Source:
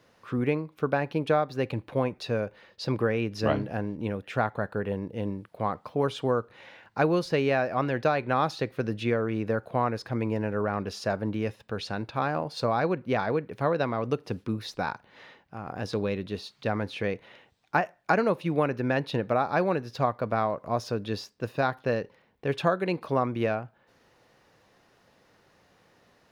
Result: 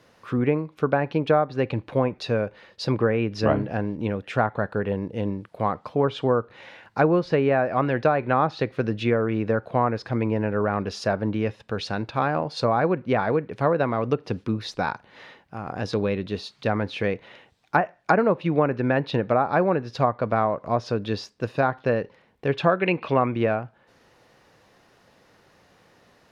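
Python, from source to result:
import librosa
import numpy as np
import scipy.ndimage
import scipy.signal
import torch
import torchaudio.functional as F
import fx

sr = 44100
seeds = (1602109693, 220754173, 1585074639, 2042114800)

y = fx.peak_eq(x, sr, hz=2600.0, db=14.5, octaves=0.71, at=(22.69, 23.35))
y = fx.env_lowpass_down(y, sr, base_hz=1700.0, full_db=-20.5)
y = y * librosa.db_to_amplitude(4.5)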